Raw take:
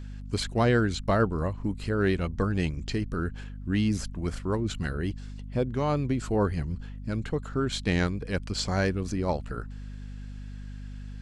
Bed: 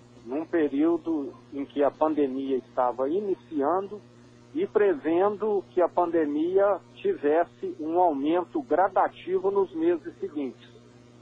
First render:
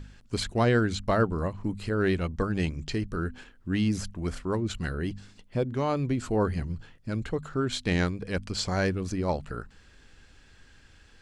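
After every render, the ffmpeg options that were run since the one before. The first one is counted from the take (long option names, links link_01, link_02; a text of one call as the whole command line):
ffmpeg -i in.wav -af "bandreject=frequency=50:width_type=h:width=4,bandreject=frequency=100:width_type=h:width=4,bandreject=frequency=150:width_type=h:width=4,bandreject=frequency=200:width_type=h:width=4,bandreject=frequency=250:width_type=h:width=4" out.wav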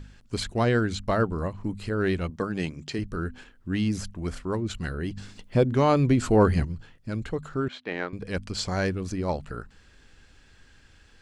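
ffmpeg -i in.wav -filter_complex "[0:a]asettb=1/sr,asplit=3[link_01][link_02][link_03];[link_01]atrim=end=2.304[link_04];[link_02]atrim=start=2.3:end=2.99,asetpts=PTS-STARTPTS,afade=type=in:duration=0.004:curve=qsin,afade=type=out:start_time=0.686:duration=0.004:curve=qsin,highpass=140[link_05];[link_03]atrim=start=2.986[link_06];[link_04][link_05]acrossfade=duration=0.004:curve1=hsin:curve2=qsin[link_07];[link_07][link_06]acrossfade=duration=0.004:curve1=qsin:curve2=hsin,asettb=1/sr,asplit=3[link_08][link_09][link_10];[link_08]atrim=end=5.174[link_11];[link_09]atrim=start=5.17:end=6.65,asetpts=PTS-STARTPTS,afade=type=in:duration=0.004:curve=qsin,afade=type=out:start_time=1.476:duration=0.004:curve=qsin,acontrast=81[link_12];[link_10]atrim=start=6.646[link_13];[link_11][link_12]acrossfade=duration=0.004:curve1=hsin:curve2=qsin[link_14];[link_14][link_13]acrossfade=duration=0.004:curve1=qsin:curve2=hsin,asettb=1/sr,asplit=3[link_15][link_16][link_17];[link_15]atrim=end=7.684[link_18];[link_16]atrim=start=7.68:end=8.13,asetpts=PTS-STARTPTS,afade=type=in:duration=0.004:curve=qsin,afade=type=out:start_time=0.446:duration=0.004:curve=qsin,highpass=390,lowpass=2200[link_19];[link_17]atrim=start=8.126[link_20];[link_18][link_19]acrossfade=duration=0.004:curve1=hsin:curve2=qsin[link_21];[link_21][link_20]acrossfade=duration=0.004:curve1=qsin:curve2=hsin" out.wav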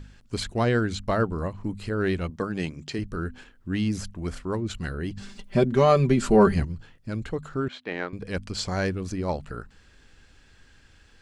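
ffmpeg -i in.wav -filter_complex "[0:a]asettb=1/sr,asplit=3[link_01][link_02][link_03];[link_01]atrim=end=5.204[link_04];[link_02]atrim=start=5.2:end=6.54,asetpts=PTS-STARTPTS,afade=type=in:duration=0.004:curve=qsin,afade=type=out:start_time=1.336:duration=0.004:curve=qsin,aecho=1:1:5.1:0.77,atrim=end_sample=59094[link_05];[link_03]atrim=start=6.536[link_06];[link_04][link_05]acrossfade=duration=0.004:curve1=hsin:curve2=qsin[link_07];[link_07][link_06]acrossfade=duration=0.004:curve1=qsin:curve2=hsin" out.wav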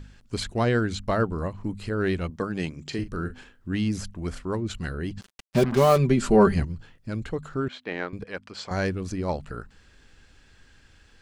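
ffmpeg -i in.wav -filter_complex "[0:a]asettb=1/sr,asplit=3[link_01][link_02][link_03];[link_01]atrim=end=2.814[link_04];[link_02]atrim=start=2.81:end=3.75,asetpts=PTS-STARTPTS,afade=type=in:duration=0.004:curve=qsin,afade=type=out:start_time=0.936:duration=0.004:curve=qsin,asplit=2[link_05][link_06];[link_06]adelay=41,volume=-10.5dB[link_07];[link_05][link_07]amix=inputs=2:normalize=0,atrim=end_sample=41454[link_08];[link_03]atrim=start=3.746[link_09];[link_04][link_08]acrossfade=duration=0.004:curve1=hsin:curve2=qsin[link_10];[link_10][link_09]acrossfade=duration=0.004:curve1=qsin:curve2=hsin,asettb=1/sr,asplit=3[link_11][link_12][link_13];[link_11]atrim=end=5.214[link_14];[link_12]atrim=start=5.21:end=5.98,asetpts=PTS-STARTPTS,afade=type=in:duration=0.004:curve=qsin,afade=type=out:start_time=0.766:duration=0.004:curve=qsin,acrusher=bits=4:mix=0:aa=0.5[link_15];[link_13]atrim=start=5.976[link_16];[link_14][link_15]acrossfade=duration=0.004:curve1=hsin:curve2=qsin[link_17];[link_17][link_16]acrossfade=duration=0.004:curve1=qsin:curve2=hsin,asettb=1/sr,asplit=3[link_18][link_19][link_20];[link_18]atrim=end=8.244[link_21];[link_19]atrim=start=8.24:end=8.71,asetpts=PTS-STARTPTS,afade=type=in:duration=0.004:curve=qsin,afade=type=out:start_time=0.466:duration=0.004:curve=qsin,bandpass=frequency=1200:width_type=q:width=0.55[link_22];[link_20]atrim=start=8.706[link_23];[link_21][link_22]acrossfade=duration=0.004:curve1=hsin:curve2=qsin[link_24];[link_24][link_23]acrossfade=duration=0.004:curve1=qsin:curve2=hsin" out.wav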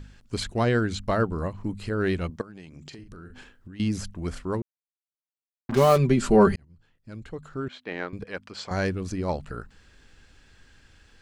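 ffmpeg -i in.wav -filter_complex "[0:a]asettb=1/sr,asplit=3[link_01][link_02][link_03];[link_01]atrim=end=2.414[link_04];[link_02]atrim=start=2.41:end=3.8,asetpts=PTS-STARTPTS,afade=type=in:duration=0.004:curve=qsin,afade=type=out:start_time=1.386:duration=0.004:curve=qsin,acompressor=threshold=-39dB:ratio=16:attack=3.2:release=140:knee=1:detection=peak[link_05];[link_03]atrim=start=3.796[link_06];[link_04][link_05]acrossfade=duration=0.004:curve1=hsin:curve2=qsin[link_07];[link_07][link_06]acrossfade=duration=0.004:curve1=qsin:curve2=hsin,asplit=4[link_08][link_09][link_10][link_11];[link_08]atrim=end=4.62,asetpts=PTS-STARTPTS,afade=type=out:start_time=4.616:duration=0.004:curve=hsin[link_12];[link_09]atrim=start=4.62:end=5.69,asetpts=PTS-STARTPTS,volume=0[link_13];[link_10]atrim=start=5.69:end=6.56,asetpts=PTS-STARTPTS,afade=type=in:duration=0.004:curve=hsin,afade=type=out:start_time=0.866:duration=0.004:curve=hsin[link_14];[link_11]atrim=start=6.56,asetpts=PTS-STARTPTS,afade=type=in:duration=1.69[link_15];[link_12][link_13][link_14][link_15]concat=n=4:v=0:a=1" out.wav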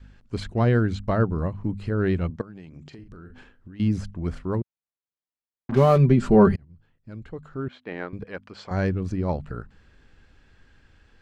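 ffmpeg -i in.wav -af "lowpass=frequency=2000:poles=1,adynamicequalizer=threshold=0.0158:dfrequency=120:dqfactor=0.72:tfrequency=120:tqfactor=0.72:attack=5:release=100:ratio=0.375:range=3:mode=boostabove:tftype=bell" out.wav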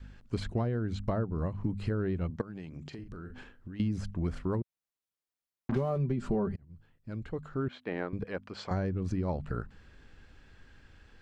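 ffmpeg -i in.wav -filter_complex "[0:a]acrossover=split=1100[link_01][link_02];[link_02]alimiter=level_in=7.5dB:limit=-24dB:level=0:latency=1:release=251,volume=-7.5dB[link_03];[link_01][link_03]amix=inputs=2:normalize=0,acompressor=threshold=-27dB:ratio=10" out.wav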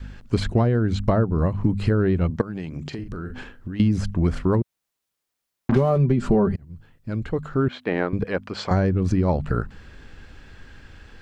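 ffmpeg -i in.wav -af "volume=11.5dB" out.wav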